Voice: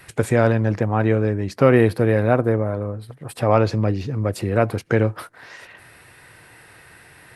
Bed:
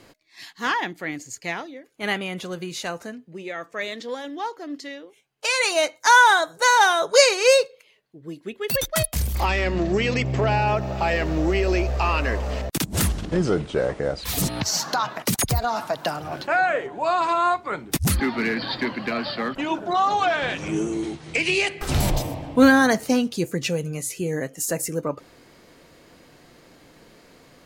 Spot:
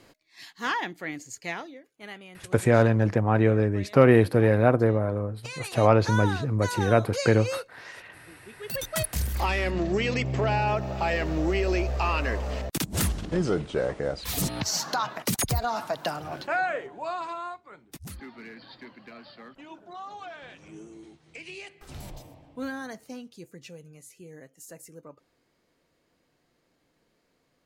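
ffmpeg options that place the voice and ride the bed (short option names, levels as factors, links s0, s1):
-filter_complex "[0:a]adelay=2350,volume=0.75[s0];[1:a]volume=2.66,afade=t=out:st=1.67:d=0.41:silence=0.237137,afade=t=in:st=8.43:d=0.74:silence=0.223872,afade=t=out:st=16.23:d=1.39:silence=0.158489[s1];[s0][s1]amix=inputs=2:normalize=0"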